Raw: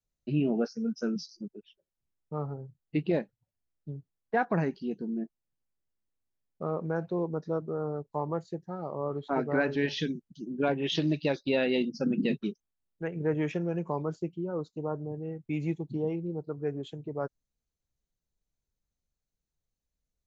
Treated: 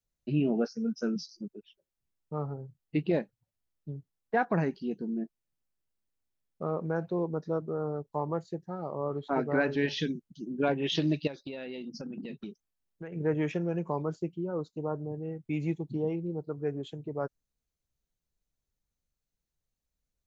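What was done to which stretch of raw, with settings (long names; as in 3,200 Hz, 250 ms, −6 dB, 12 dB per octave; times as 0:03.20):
0:11.27–0:13.12: downward compressor 10 to 1, threshold −36 dBFS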